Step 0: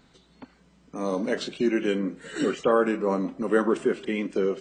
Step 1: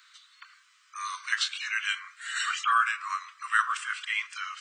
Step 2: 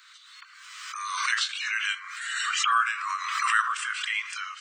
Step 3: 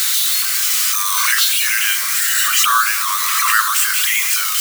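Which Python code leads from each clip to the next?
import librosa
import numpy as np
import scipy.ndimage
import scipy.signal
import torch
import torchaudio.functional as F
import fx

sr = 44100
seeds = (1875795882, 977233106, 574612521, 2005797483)

y1 = scipy.signal.sosfilt(scipy.signal.butter(16, 1100.0, 'highpass', fs=sr, output='sos'), x)
y1 = F.gain(torch.from_numpy(y1), 7.0).numpy()
y2 = fx.pre_swell(y1, sr, db_per_s=36.0)
y3 = y2 + 0.5 * 10.0 ** (-16.0 / 20.0) * np.diff(np.sign(y2), prepend=np.sign(y2[:1]))
y3 = F.gain(torch.from_numpy(y3), 7.5).numpy()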